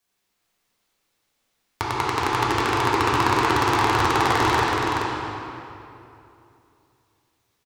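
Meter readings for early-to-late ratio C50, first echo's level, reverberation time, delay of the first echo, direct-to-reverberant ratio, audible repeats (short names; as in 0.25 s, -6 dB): -4.5 dB, -4.5 dB, 2.8 s, 0.424 s, -8.0 dB, 1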